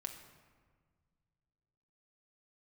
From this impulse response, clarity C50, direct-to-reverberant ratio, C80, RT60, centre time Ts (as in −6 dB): 8.0 dB, 3.0 dB, 9.5 dB, 1.6 s, 25 ms